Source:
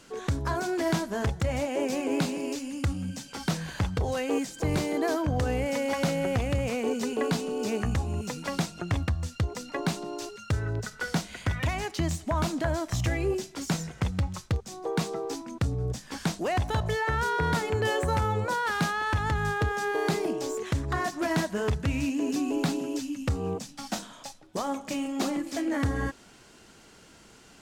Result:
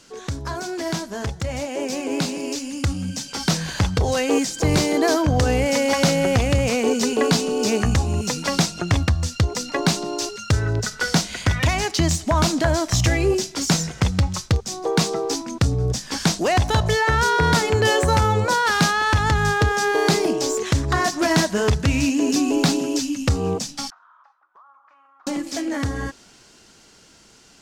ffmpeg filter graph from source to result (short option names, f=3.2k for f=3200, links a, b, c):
-filter_complex "[0:a]asettb=1/sr,asplit=3[a][b][c];[a]atrim=end=23.904[d];[b]atrim=start=23.9:end=25.27,asetpts=PTS-STARTPTS,afade=t=in:d=0.004:c=qsin,afade=t=out:st=1.366:d=0.004:c=qsin,asuperpass=centerf=1200:order=4:qfactor=2.8,acompressor=threshold=-58dB:ratio=4:attack=3.2:release=140:knee=1:detection=peak[e];[c]atrim=start=25.266[f];[d][e]acrossfade=d=0.004:c1=hsin:c2=qsin[g];[g][f]acrossfade=d=0.004:c1=qsin:c2=hsin,equalizer=f=5.4k:t=o:w=1.2:g=7.5,dynaudnorm=f=180:g=31:m=9dB"